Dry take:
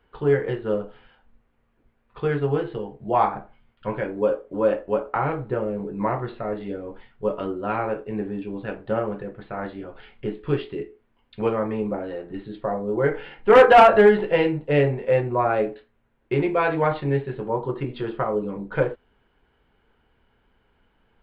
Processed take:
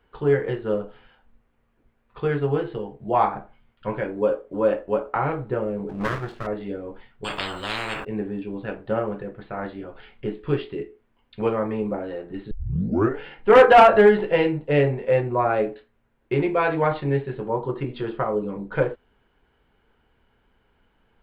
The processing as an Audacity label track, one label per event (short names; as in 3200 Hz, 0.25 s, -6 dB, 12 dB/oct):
5.890000	6.470000	minimum comb delay 0.64 ms
7.240000	8.050000	spectral compressor 10:1
12.510000	12.510000	tape start 0.68 s